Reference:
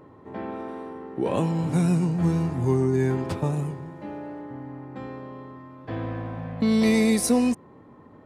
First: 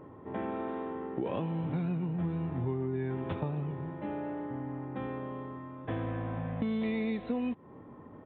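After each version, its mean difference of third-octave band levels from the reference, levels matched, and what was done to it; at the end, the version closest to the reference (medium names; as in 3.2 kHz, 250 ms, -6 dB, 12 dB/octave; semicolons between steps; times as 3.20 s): 6.0 dB: compression 5:1, threshold -31 dBFS, peak gain reduction 13 dB; resampled via 8 kHz; tape noise reduction on one side only decoder only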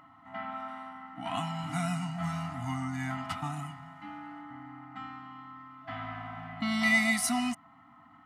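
8.0 dB: FFT band-reject 310–660 Hz; bass shelf 360 Hz -10 dB; small resonant body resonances 610/1300/2000/2900 Hz, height 16 dB, ringing for 30 ms; trim -4 dB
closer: first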